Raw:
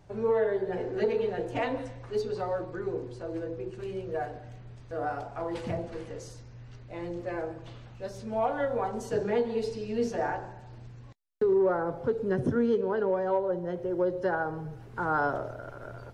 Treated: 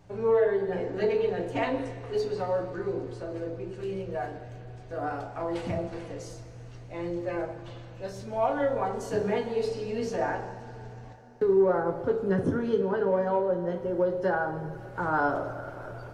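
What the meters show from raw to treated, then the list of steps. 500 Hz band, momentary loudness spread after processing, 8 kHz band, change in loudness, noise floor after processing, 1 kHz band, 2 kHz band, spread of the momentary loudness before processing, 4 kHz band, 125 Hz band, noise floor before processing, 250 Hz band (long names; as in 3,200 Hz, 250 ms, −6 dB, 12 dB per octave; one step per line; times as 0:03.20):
+2.0 dB, 16 LU, +1.5 dB, +1.5 dB, −45 dBFS, +1.5 dB, +1.5 dB, 17 LU, +2.0 dB, +2.0 dB, −48 dBFS, +1.0 dB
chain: coupled-rooms reverb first 0.26 s, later 4.4 s, from −21 dB, DRR 2.5 dB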